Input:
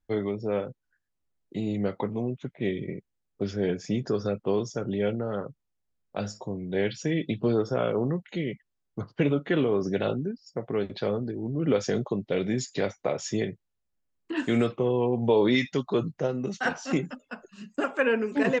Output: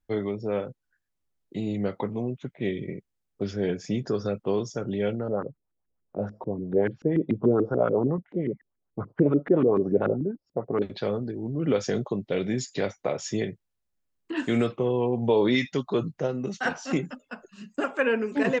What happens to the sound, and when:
0:05.28–0:10.82: auto-filter low-pass saw up 6.9 Hz 270–1,700 Hz

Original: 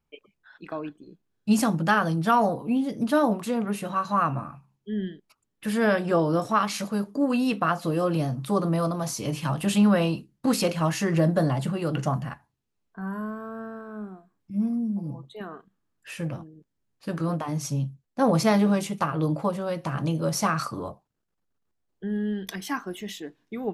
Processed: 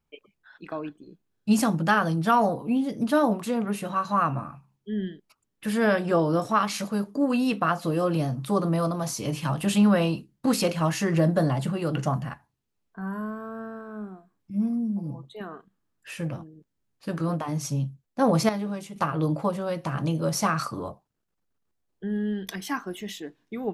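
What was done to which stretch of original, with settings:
0:18.49–0:18.96: clip gain −9.5 dB

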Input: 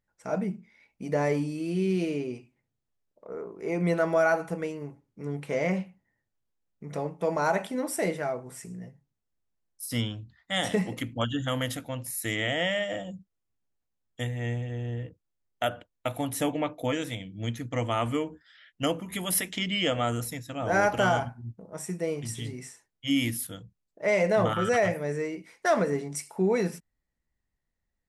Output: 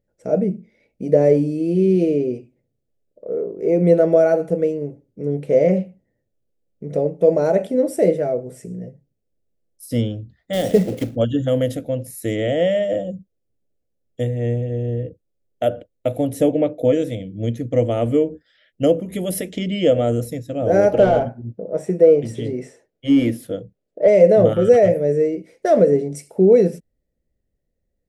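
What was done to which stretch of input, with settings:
0:10.53–0:11.17: one scale factor per block 3 bits
0:20.94–0:24.08: mid-hump overdrive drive 17 dB, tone 1,200 Hz, clips at −12.5 dBFS
whole clip: low shelf with overshoot 730 Hz +10.5 dB, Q 3; level −2 dB

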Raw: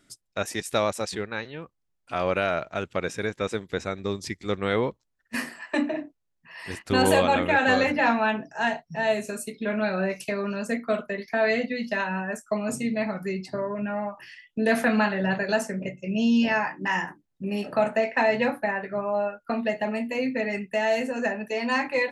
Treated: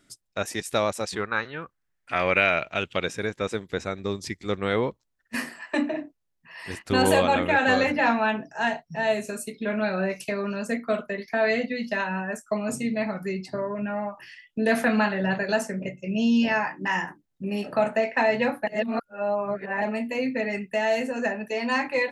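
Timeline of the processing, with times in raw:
0:01.15–0:03.05: parametric band 1,100 Hz → 3,300 Hz +13 dB
0:18.67–0:19.82: reverse

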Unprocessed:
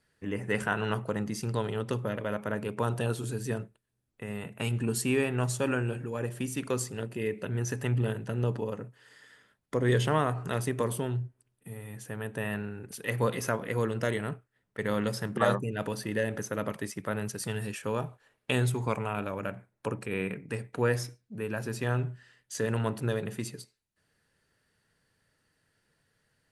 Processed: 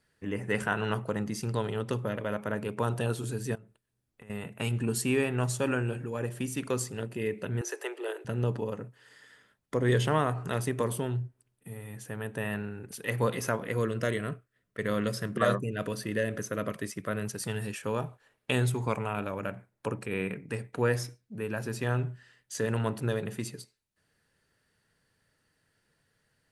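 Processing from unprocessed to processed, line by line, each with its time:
0:03.55–0:04.30: downward compressor 20 to 1, threshold −46 dBFS
0:07.61–0:08.25: Butterworth high-pass 320 Hz 96 dB per octave
0:13.75–0:17.25: Butterworth band-reject 850 Hz, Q 3.7

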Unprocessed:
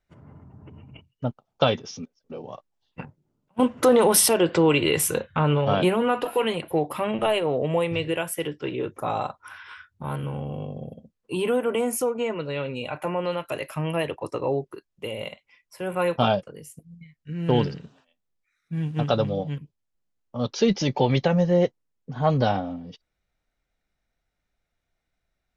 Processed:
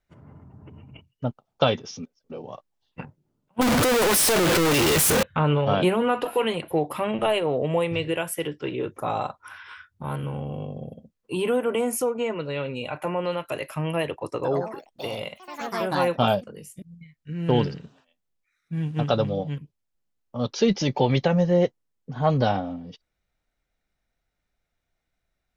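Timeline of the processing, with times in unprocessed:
0:03.61–0:05.23: sign of each sample alone
0:14.32–0:17.33: delay with pitch and tempo change per echo 112 ms, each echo +4 semitones, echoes 3, each echo −6 dB

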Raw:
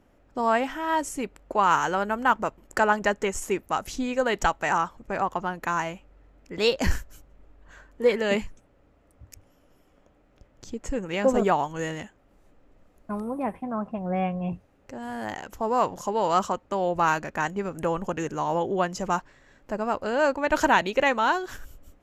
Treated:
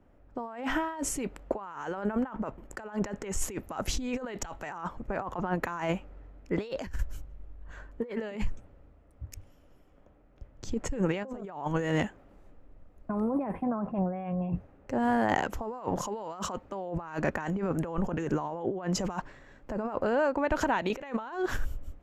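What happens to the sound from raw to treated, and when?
0:19.97–0:20.90: downward compressor, threshold −33 dBFS
whole clip: compressor whose output falls as the input rises −34 dBFS, ratio −1; high-shelf EQ 2,900 Hz −10.5 dB; multiband upward and downward expander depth 40%; level +2 dB

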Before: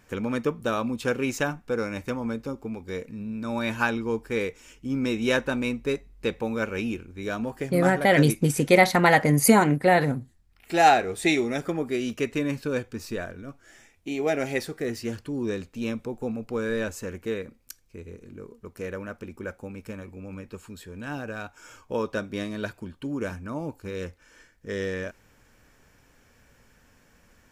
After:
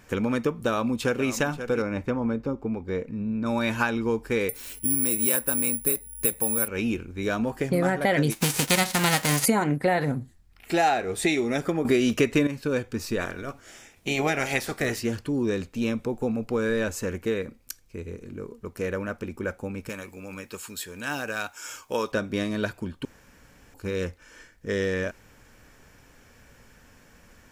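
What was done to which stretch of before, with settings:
0:00.55–0:01.28: delay throw 530 ms, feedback 15%, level −14 dB
0:01.82–0:03.46: low-pass filter 1,400 Hz 6 dB per octave
0:04.49–0:06.68: bad sample-rate conversion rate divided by 4×, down none, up zero stuff
0:08.31–0:09.44: spectral envelope flattened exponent 0.3
0:11.85–0:12.47: clip gain +11.5 dB
0:13.19–0:14.99: ceiling on every frequency bin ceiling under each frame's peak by 15 dB
0:19.89–0:22.12: spectral tilt +3 dB per octave
0:23.05–0:23.74: fill with room tone
whole clip: downward compressor 3 to 1, threshold −27 dBFS; level +5 dB

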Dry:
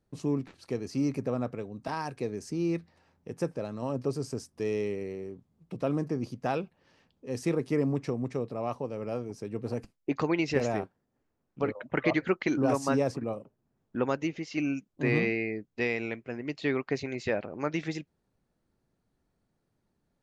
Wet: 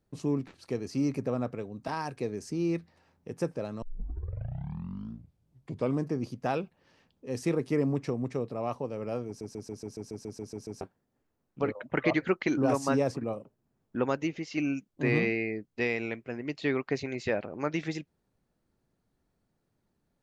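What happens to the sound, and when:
0:03.82: tape start 2.23 s
0:09.27: stutter in place 0.14 s, 11 plays

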